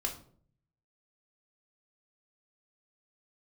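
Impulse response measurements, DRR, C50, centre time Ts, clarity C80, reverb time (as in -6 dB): 1.5 dB, 10.0 dB, 17 ms, 14.5 dB, 0.55 s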